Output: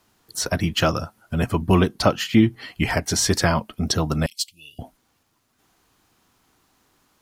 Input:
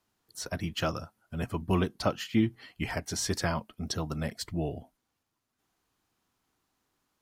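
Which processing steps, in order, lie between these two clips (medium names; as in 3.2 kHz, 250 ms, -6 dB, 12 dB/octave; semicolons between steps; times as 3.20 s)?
4.26–4.79 s: elliptic high-pass 2.7 kHz, stop band 40 dB; in parallel at -0.5 dB: compression, threshold -38 dBFS, peak gain reduction 17 dB; on the sum: trim +8.5 dB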